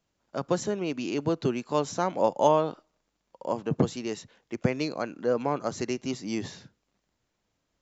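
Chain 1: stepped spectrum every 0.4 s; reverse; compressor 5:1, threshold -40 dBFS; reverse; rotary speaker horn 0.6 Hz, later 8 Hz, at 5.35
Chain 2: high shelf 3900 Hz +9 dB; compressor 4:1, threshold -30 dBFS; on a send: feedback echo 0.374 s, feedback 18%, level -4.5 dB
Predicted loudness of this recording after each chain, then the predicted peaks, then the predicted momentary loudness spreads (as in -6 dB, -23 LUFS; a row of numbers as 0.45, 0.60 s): -46.0, -34.5 LUFS; -27.0, -16.0 dBFS; 7, 8 LU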